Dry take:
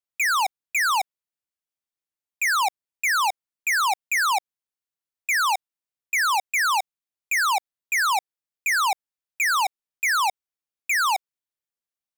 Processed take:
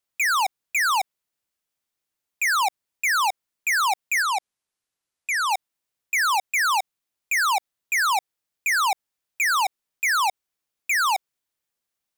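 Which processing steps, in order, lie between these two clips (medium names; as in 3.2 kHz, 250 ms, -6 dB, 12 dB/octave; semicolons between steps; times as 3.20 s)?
4.22–5.51 s: steep low-pass 12 kHz 36 dB/octave; peak limiter -29 dBFS, peak gain reduction 11 dB; trim +8.5 dB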